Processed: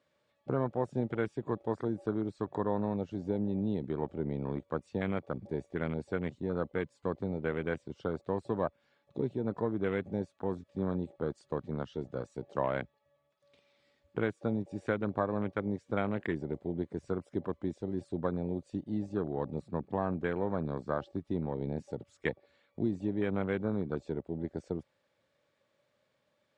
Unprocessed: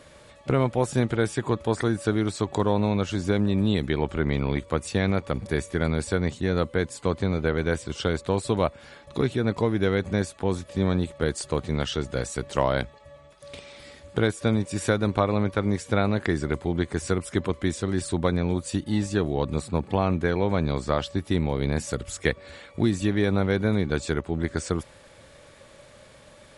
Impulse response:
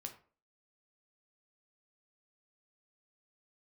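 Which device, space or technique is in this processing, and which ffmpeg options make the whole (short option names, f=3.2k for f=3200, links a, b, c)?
over-cleaned archive recording: -af "highpass=130,lowpass=5.6k,afwtdn=0.0282,volume=-8dB"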